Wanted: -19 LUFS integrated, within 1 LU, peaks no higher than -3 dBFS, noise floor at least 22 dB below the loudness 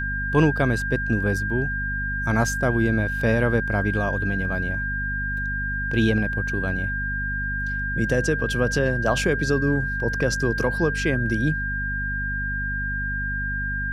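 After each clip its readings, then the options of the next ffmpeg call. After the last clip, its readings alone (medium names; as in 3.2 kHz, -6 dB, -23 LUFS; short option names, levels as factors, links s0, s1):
hum 50 Hz; highest harmonic 250 Hz; hum level -27 dBFS; steady tone 1.6 kHz; tone level -26 dBFS; loudness -23.5 LUFS; peak level -5.5 dBFS; loudness target -19.0 LUFS
-> -af "bandreject=f=50:t=h:w=4,bandreject=f=100:t=h:w=4,bandreject=f=150:t=h:w=4,bandreject=f=200:t=h:w=4,bandreject=f=250:t=h:w=4"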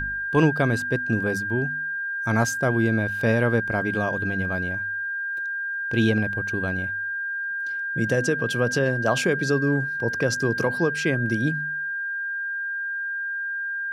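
hum not found; steady tone 1.6 kHz; tone level -26 dBFS
-> -af "bandreject=f=1600:w=30"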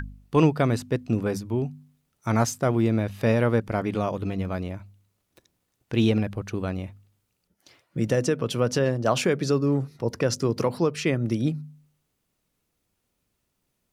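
steady tone not found; loudness -25.5 LUFS; peak level -8.0 dBFS; loudness target -19.0 LUFS
-> -af "volume=2.11,alimiter=limit=0.708:level=0:latency=1"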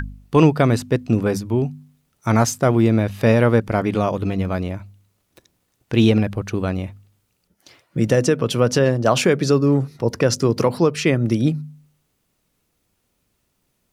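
loudness -19.0 LUFS; peak level -3.0 dBFS; noise floor -70 dBFS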